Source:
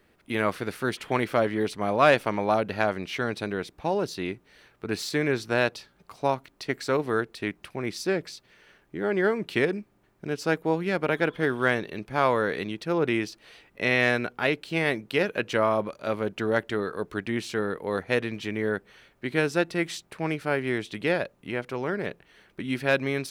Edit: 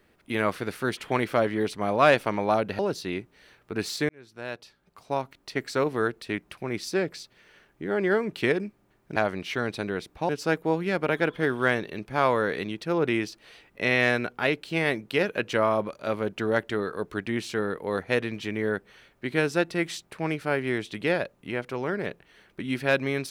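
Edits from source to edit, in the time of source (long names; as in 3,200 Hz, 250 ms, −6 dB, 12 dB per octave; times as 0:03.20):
0:02.79–0:03.92: move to 0:10.29
0:05.22–0:06.78: fade in linear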